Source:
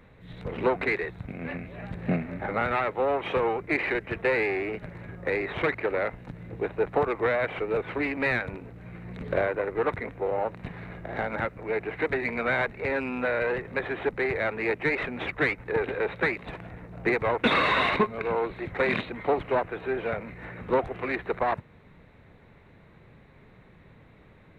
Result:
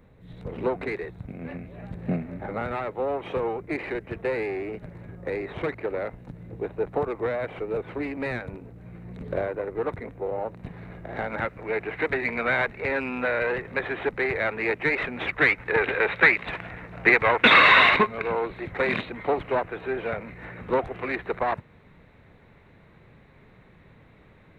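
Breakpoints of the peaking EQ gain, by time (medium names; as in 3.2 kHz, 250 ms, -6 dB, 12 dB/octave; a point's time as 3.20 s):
peaking EQ 2.2 kHz 2.6 oct
10.65 s -7.5 dB
11.55 s +3 dB
15.18 s +3 dB
15.78 s +11 dB
17.78 s +11 dB
18.41 s +1 dB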